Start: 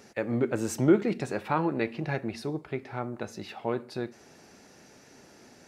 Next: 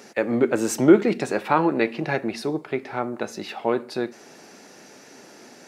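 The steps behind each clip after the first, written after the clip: HPF 210 Hz 12 dB/oct; gain +8 dB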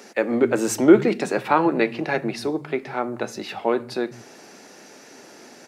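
bands offset in time highs, lows 0.15 s, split 150 Hz; gain +1.5 dB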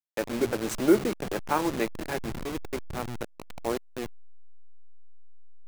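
level-crossing sampler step -20.5 dBFS; gain -7.5 dB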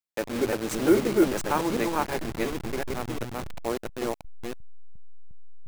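reverse delay 0.354 s, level -1 dB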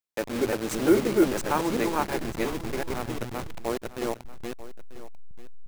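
echo 0.941 s -16 dB

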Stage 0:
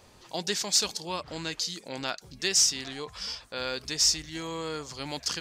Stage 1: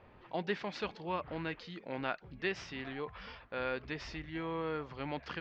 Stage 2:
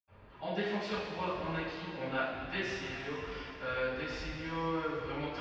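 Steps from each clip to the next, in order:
LPF 2500 Hz 24 dB/oct; gain -2 dB
reverb RT60 3.0 s, pre-delay 76 ms

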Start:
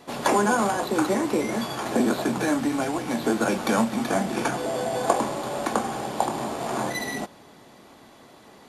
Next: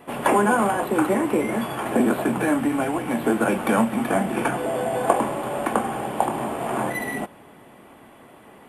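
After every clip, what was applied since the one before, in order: band shelf 5100 Hz -15.5 dB 1.1 oct; gain +2.5 dB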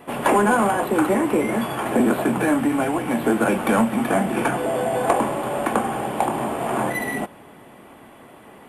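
soft clip -10.5 dBFS, distortion -20 dB; gain +2.5 dB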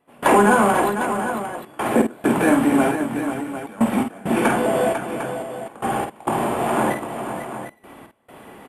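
step gate ".xxx....x" 67 bpm -24 dB; tapped delay 50/498/752 ms -6.5/-8.5/-10.5 dB; gain +2 dB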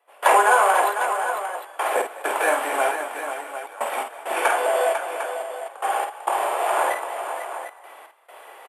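inverse Chebyshev high-pass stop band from 200 Hz, stop band 50 dB; frequency-shifting echo 0.205 s, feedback 36%, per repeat +44 Hz, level -16.5 dB; gain +1 dB

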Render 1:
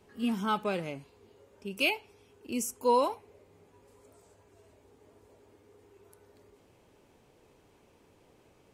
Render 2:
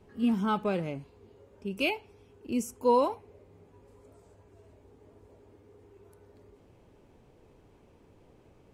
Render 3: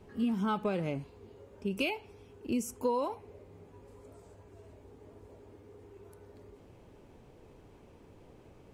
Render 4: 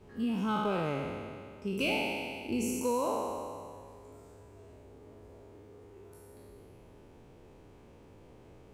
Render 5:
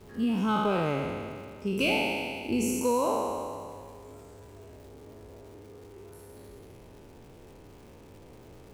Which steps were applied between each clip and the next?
tilt -2 dB/oct
compressor 6:1, threshold -31 dBFS, peak gain reduction 11.5 dB; gain +3 dB
spectral trails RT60 2.16 s; gain -2.5 dB
crackle 380/s -53 dBFS; gain +4.5 dB

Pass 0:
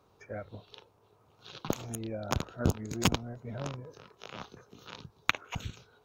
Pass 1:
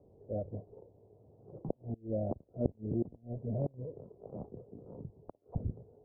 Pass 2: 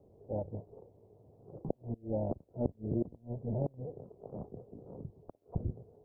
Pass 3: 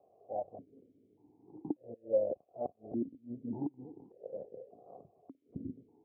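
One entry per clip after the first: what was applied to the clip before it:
flipped gate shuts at -23 dBFS, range -28 dB; transient shaper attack -4 dB, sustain 0 dB; steep low-pass 650 Hz 36 dB/oct; gain +6 dB
AM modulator 250 Hz, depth 30%; gain +2.5 dB
vowel sequencer 1.7 Hz; gain +9.5 dB

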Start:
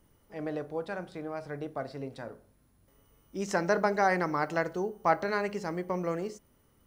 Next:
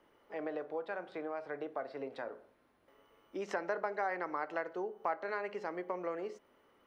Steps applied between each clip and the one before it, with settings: three-band isolator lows -23 dB, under 310 Hz, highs -20 dB, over 3500 Hz; compressor 2.5:1, threshold -44 dBFS, peak gain reduction 16 dB; gain +5 dB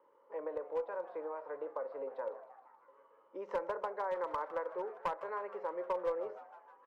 double band-pass 710 Hz, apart 0.83 oct; one-sided clip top -38 dBFS; frequency-shifting echo 0.156 s, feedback 63%, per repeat +120 Hz, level -17 dB; gain +7.5 dB

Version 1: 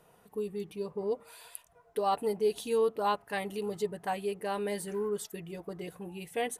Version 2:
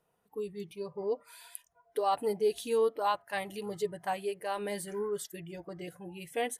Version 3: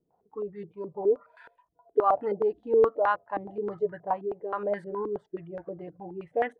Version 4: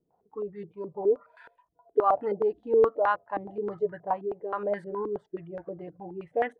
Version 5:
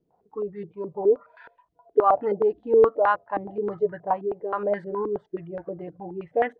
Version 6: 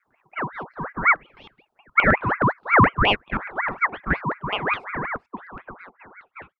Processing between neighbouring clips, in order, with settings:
spectral noise reduction 14 dB
stepped low-pass 9.5 Hz 310–1600 Hz
nothing audible
air absorption 120 m; gain +4.5 dB
ending faded out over 2.14 s; ring modulator with a swept carrier 1200 Hz, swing 55%, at 5.5 Hz; gain +4.5 dB

